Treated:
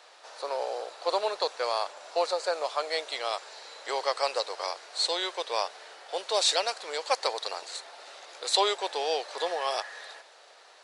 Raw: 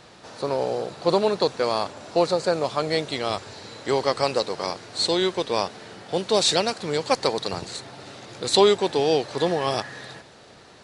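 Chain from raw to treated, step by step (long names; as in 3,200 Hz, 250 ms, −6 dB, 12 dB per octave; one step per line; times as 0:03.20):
high-pass filter 540 Hz 24 dB per octave
level −3.5 dB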